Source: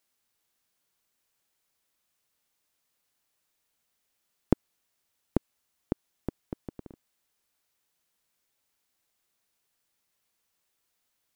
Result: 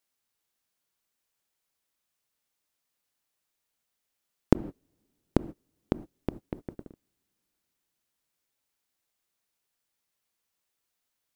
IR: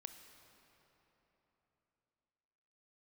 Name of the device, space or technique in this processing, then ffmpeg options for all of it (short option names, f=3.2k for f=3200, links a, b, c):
keyed gated reverb: -filter_complex "[0:a]asplit=3[a][b][c];[1:a]atrim=start_sample=2205[d];[b][d]afir=irnorm=-1:irlink=0[e];[c]apad=whole_len=500697[f];[e][f]sidechaingate=range=-33dB:threshold=-44dB:ratio=16:detection=peak,volume=9dB[g];[a][g]amix=inputs=2:normalize=0,volume=-4.5dB"